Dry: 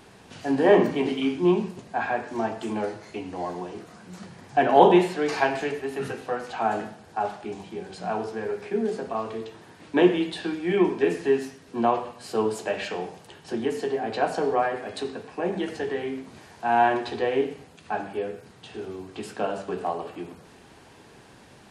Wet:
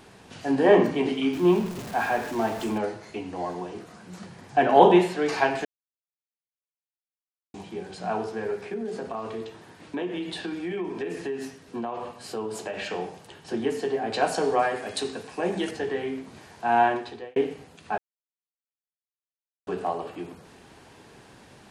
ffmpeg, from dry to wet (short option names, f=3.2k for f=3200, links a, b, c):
-filter_complex "[0:a]asettb=1/sr,asplit=3[a][b][c];[a]atrim=end=1.334[d];[b]atrim=start=1.33:end=2.78,asetpts=PTS-STARTPTS,afade=t=in:d=0.004:c=qsin,afade=t=out:st=1.446:d=0.004:c=qsin,aeval=exprs='val(0)+0.5*0.02*sgn(val(0))':c=same[e];[c]atrim=start=2.776[f];[d][e]acrossfade=d=0.004:c1=hsin:c2=qsin[g];[g][f]acrossfade=d=0.004:c1=qsin:c2=hsin,asettb=1/sr,asplit=3[h][i][j];[h]atrim=end=8.654[k];[i]atrim=start=8.65:end=12.88,asetpts=PTS-STARTPTS,afade=t=in:d=0.004:c=qsin,afade=t=out:st=4.226:d=0.004:c=qsin,acompressor=threshold=-28dB:ratio=5:attack=3.2:release=140:knee=1:detection=peak[l];[j]atrim=start=12.876[m];[k][l]acrossfade=d=0.004:c1=hsin:c2=qsin[n];[n][m]acrossfade=d=0.004:c1=qsin:c2=hsin,asettb=1/sr,asplit=3[o][p][q];[o]atrim=end=14.124[r];[p]atrim=start=14.12:end=15.71,asetpts=PTS-STARTPTS,afade=t=in:d=0.004:c=qsin,afade=t=out:st=1.586:d=0.004:c=qsin,highshelf=f=4k:g=11.5[s];[q]atrim=start=15.706[t];[r][s]acrossfade=d=0.004:c1=hsin:c2=qsin[u];[u][t]acrossfade=d=0.004:c1=qsin:c2=hsin,asplit=6[v][w][x][y][z][aa];[v]atrim=end=5.65,asetpts=PTS-STARTPTS,afade=t=out:st=5.646:d=0.004:c=hsin[ab];[w]atrim=start=5.65:end=7.54,asetpts=PTS-STARTPTS,volume=0[ac];[x]atrim=start=7.54:end=17.36,asetpts=PTS-STARTPTS,afade=t=in:d=0.004:c=hsin,afade=t=out:st=9.25:d=0.57[ad];[y]atrim=start=17.36:end=17.98,asetpts=PTS-STARTPTS,afade=t=in:d=0.004:c=hsin,afade=t=out:st=0.616:d=0.004:c=hsin[ae];[z]atrim=start=17.98:end=19.67,asetpts=PTS-STARTPTS,volume=0[af];[aa]atrim=start=19.67,asetpts=PTS-STARTPTS,afade=t=in:d=0.004:c=hsin[ag];[ab][ac][ad][ae][af][ag]concat=n=6:v=0:a=1"